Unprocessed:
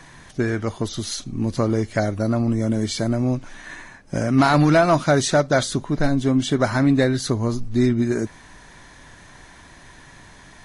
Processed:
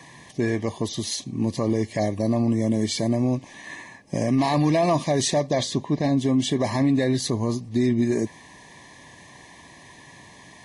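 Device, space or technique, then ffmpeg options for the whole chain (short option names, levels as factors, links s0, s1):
PA system with an anti-feedback notch: -filter_complex "[0:a]asettb=1/sr,asplit=3[s0][s1][s2];[s0]atrim=end=5.534[s3];[s1]atrim=start=5.53:end=6.17,asetpts=PTS-STARTPTS,afade=t=in:d=0.004:c=qsin,afade=t=out:st=0.636:d=0.004:c=qsin,lowpass=6500[s4];[s2]atrim=start=6.166[s5];[s3][s4]acrossfade=d=0.004:c1=hsin:c2=qsin[s6];[s6][s5]acrossfade=d=0.004:c1=qsin:c2=hsin,highpass=110,asuperstop=centerf=1400:order=12:qfactor=3,alimiter=limit=0.224:level=0:latency=1:release=18"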